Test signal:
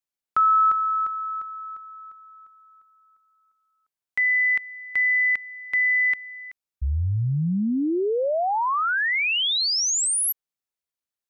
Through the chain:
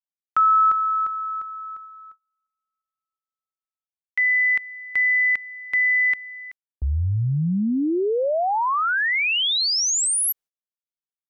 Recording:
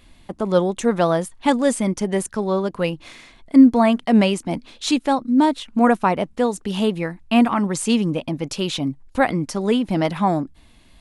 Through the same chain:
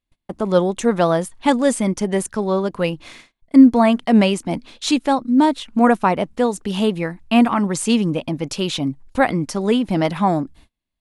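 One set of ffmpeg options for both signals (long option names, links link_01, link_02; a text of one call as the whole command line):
ffmpeg -i in.wav -af "agate=range=-34dB:threshold=-42dB:ratio=16:release=300:detection=peak,volume=1.5dB" out.wav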